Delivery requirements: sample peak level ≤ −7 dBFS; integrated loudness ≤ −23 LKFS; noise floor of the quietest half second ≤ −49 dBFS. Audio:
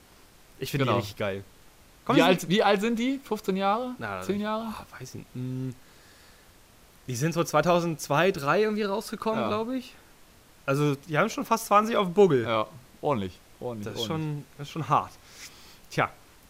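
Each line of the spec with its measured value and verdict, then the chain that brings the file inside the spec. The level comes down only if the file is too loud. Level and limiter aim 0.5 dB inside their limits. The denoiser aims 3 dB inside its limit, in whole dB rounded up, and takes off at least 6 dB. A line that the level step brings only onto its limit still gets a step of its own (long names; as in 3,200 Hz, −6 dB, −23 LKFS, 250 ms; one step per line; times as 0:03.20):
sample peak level −8.0 dBFS: in spec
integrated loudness −27.0 LKFS: in spec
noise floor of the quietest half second −55 dBFS: in spec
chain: no processing needed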